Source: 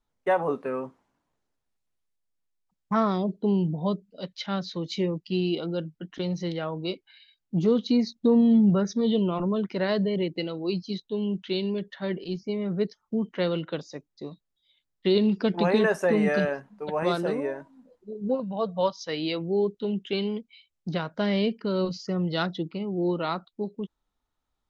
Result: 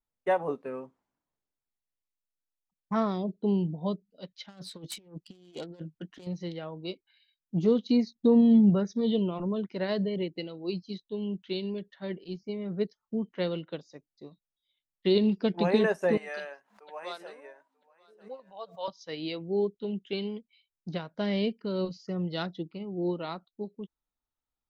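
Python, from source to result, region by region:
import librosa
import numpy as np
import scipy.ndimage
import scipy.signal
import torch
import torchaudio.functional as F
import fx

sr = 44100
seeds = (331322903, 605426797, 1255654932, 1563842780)

y = fx.chain(x, sr, fx.self_delay(depth_ms=0.16),
    fx.low_shelf(hz=140.0, db=-3.5),
    fx.over_compress(threshold_db=-34.0, ratio=-0.5), at=(4.48, 6.27))
y = fx.chain(y, sr, fx.highpass(hz=770.0, slope=12),
    fx.echo_single(ms=938, db=-21.0),
    fx.pre_swell(db_per_s=130.0), at=(16.17, 18.88))
y = fx.dynamic_eq(y, sr, hz=1300.0, q=1.8, threshold_db=-46.0, ratio=4.0, max_db=-4)
y = fx.upward_expand(y, sr, threshold_db=-41.0, expansion=1.5)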